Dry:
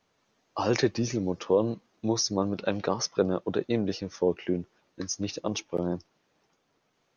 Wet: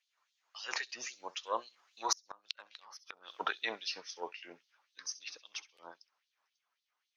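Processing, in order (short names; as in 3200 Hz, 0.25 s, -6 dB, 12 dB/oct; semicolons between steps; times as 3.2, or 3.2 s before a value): Doppler pass-by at 2.8, 11 m/s, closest 1.7 m; added harmonics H 8 -30 dB, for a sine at -12 dBFS; flutter echo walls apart 11.3 m, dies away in 0.23 s; LFO high-pass sine 3.7 Hz 950–4000 Hz; flipped gate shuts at -32 dBFS, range -35 dB; gain +15.5 dB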